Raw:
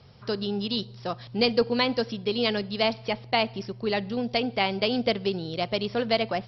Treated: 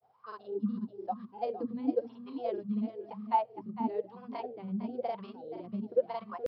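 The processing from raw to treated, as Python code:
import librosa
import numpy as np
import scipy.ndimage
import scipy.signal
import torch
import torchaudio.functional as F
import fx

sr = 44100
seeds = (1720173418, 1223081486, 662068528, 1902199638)

y = fx.hum_notches(x, sr, base_hz=50, count=4)
y = fx.wah_lfo(y, sr, hz=1.0, low_hz=200.0, high_hz=1200.0, q=17.0)
y = y + 10.0 ** (-11.0 / 20.0) * np.pad(y, (int(464 * sr / 1000.0), 0))[:len(y)]
y = fx.vibrato(y, sr, rate_hz=3.8, depth_cents=22.0)
y = fx.granulator(y, sr, seeds[0], grain_ms=100.0, per_s=20.0, spray_ms=33.0, spread_st=0)
y = y * librosa.db_to_amplitude(8.5)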